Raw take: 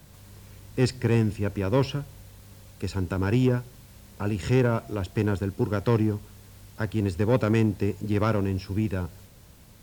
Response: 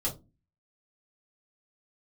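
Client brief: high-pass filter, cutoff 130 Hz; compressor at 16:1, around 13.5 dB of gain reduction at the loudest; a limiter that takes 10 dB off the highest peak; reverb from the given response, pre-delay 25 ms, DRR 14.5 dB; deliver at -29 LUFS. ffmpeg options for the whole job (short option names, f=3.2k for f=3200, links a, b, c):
-filter_complex "[0:a]highpass=130,acompressor=threshold=-31dB:ratio=16,alimiter=level_in=5.5dB:limit=-24dB:level=0:latency=1,volume=-5.5dB,asplit=2[a][b];[1:a]atrim=start_sample=2205,adelay=25[c];[b][c]afir=irnorm=-1:irlink=0,volume=-19dB[d];[a][d]amix=inputs=2:normalize=0,volume=12.5dB"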